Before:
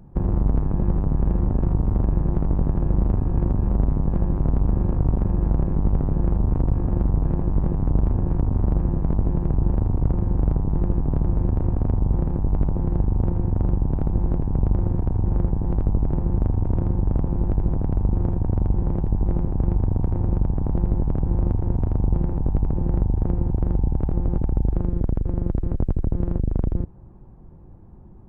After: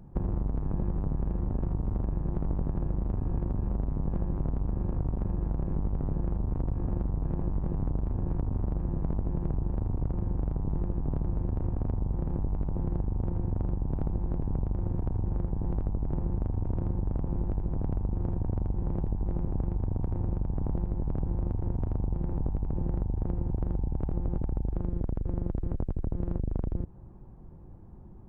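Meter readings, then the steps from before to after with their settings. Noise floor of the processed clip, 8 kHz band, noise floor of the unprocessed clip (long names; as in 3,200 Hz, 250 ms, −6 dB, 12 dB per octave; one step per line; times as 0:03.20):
−45 dBFS, can't be measured, −42 dBFS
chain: downward compressor, threshold −22 dBFS, peak gain reduction 9 dB
level −3 dB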